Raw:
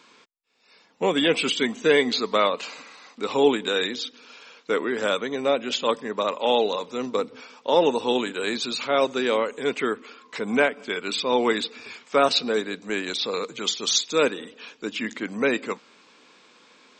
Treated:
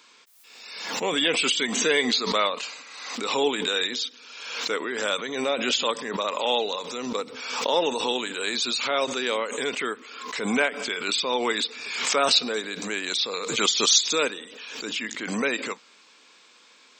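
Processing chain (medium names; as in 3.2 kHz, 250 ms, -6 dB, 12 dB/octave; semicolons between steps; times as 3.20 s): tilt EQ +2.5 dB/octave; swell ahead of each attack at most 46 dB/s; trim -3 dB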